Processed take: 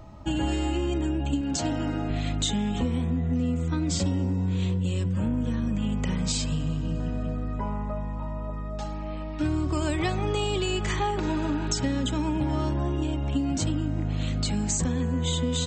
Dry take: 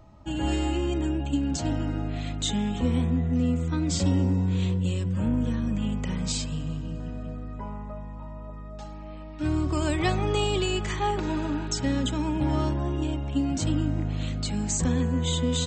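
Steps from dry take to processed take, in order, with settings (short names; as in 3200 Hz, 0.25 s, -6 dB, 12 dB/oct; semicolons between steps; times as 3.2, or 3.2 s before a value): 1.41–2.1 low shelf 160 Hz -9.5 dB; compressor 5:1, threshold -30 dBFS, peak gain reduction 10.5 dB; gain +6.5 dB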